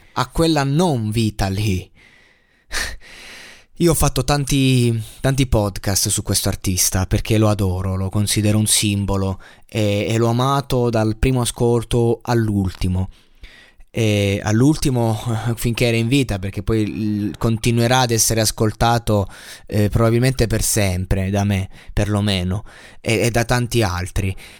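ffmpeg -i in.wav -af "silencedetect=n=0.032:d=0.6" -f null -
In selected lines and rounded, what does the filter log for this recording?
silence_start: 1.83
silence_end: 2.72 | silence_duration: 0.89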